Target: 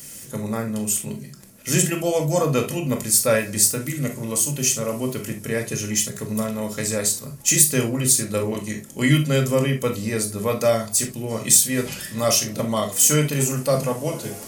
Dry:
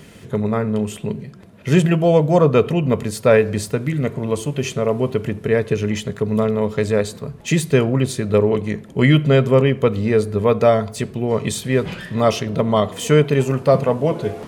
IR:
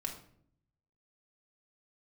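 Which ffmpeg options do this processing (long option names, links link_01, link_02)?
-filter_complex "[0:a]highshelf=frequency=2400:gain=11.5,acrossover=split=1200[link_01][link_02];[link_02]aexciter=amount=4.5:drive=5.9:freq=5200[link_03];[link_01][link_03]amix=inputs=2:normalize=0[link_04];[1:a]atrim=start_sample=2205,atrim=end_sample=3528[link_05];[link_04][link_05]afir=irnorm=-1:irlink=0,volume=-7dB"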